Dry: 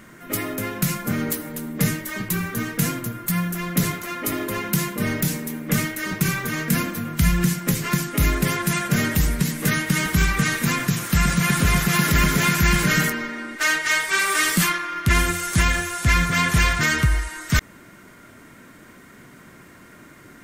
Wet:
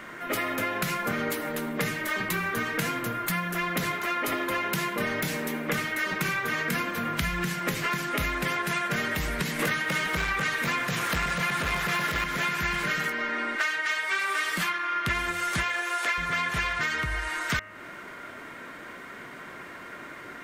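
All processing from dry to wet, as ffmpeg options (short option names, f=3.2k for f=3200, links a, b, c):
-filter_complex "[0:a]asettb=1/sr,asplit=3[a][b][c];[a]atrim=end=9.594[d];[b]atrim=start=9.59:end=12.24,asetpts=PTS-STARTPTS,afade=t=in:d=0.004:c=qsin,afade=t=out:st=2.646:d=0.004:c=qsin,acontrast=53,volume=10.5dB,asoftclip=hard,volume=-10.5dB[e];[c]atrim=start=12.236[f];[d][e]acrossfade=d=0.004:c1=hsin:c2=qsin[g];[g][f]acrossfade=d=0.004:c1=qsin:c2=hsin,asettb=1/sr,asplit=3[h][i][j];[h]atrim=end=15.634[k];[i]atrim=start=15.63:end=16.18,asetpts=PTS-STARTPTS,afade=t=in:d=0.004:c=qsin,afade=t=out:st=0.546:d=0.004:c=qsin,highpass=f=350:w=0.5412,highpass=f=350:w=1.3066,acrusher=bits=7:mix=0:aa=0.5[l];[j]atrim=start=16.176[m];[k][l]acrossfade=d=0.004:c1=hsin:c2=qsin[n];[n][m]acrossfade=d=0.004:c1=qsin:c2=hsin,acrossover=split=390 4000:gain=0.224 1 0.224[o][p][q];[o][p][q]amix=inputs=3:normalize=0,bandreject=f=103.7:t=h:w=4,bandreject=f=207.4:t=h:w=4,bandreject=f=311.1:t=h:w=4,bandreject=f=414.8:t=h:w=4,bandreject=f=518.5:t=h:w=4,bandreject=f=622.2:t=h:w=4,bandreject=f=725.9:t=h:w=4,bandreject=f=829.6:t=h:w=4,bandreject=f=933.3:t=h:w=4,bandreject=f=1.037k:t=h:w=4,bandreject=f=1.1407k:t=h:w=4,bandreject=f=1.2444k:t=h:w=4,bandreject=f=1.3481k:t=h:w=4,bandreject=f=1.4518k:t=h:w=4,bandreject=f=1.5555k:t=h:w=4,bandreject=f=1.6592k:t=h:w=4,bandreject=f=1.7629k:t=h:w=4,bandreject=f=1.8666k:t=h:w=4,bandreject=f=1.9703k:t=h:w=4,bandreject=f=2.074k:t=h:w=4,bandreject=f=2.1777k:t=h:w=4,bandreject=f=2.2814k:t=h:w=4,bandreject=f=2.3851k:t=h:w=4,bandreject=f=2.4888k:t=h:w=4,bandreject=f=2.5925k:t=h:w=4,bandreject=f=2.6962k:t=h:w=4,bandreject=f=2.7999k:t=h:w=4,bandreject=f=2.9036k:t=h:w=4,acompressor=threshold=-33dB:ratio=10,volume=8dB"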